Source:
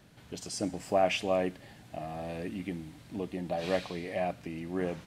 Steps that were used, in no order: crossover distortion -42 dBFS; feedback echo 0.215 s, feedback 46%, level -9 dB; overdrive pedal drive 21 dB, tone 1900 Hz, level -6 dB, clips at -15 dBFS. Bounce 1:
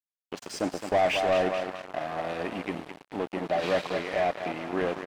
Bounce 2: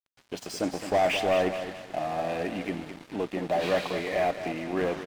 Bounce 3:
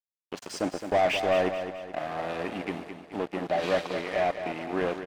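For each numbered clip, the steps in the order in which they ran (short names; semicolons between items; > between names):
feedback echo > crossover distortion > overdrive pedal; overdrive pedal > feedback echo > crossover distortion; crossover distortion > overdrive pedal > feedback echo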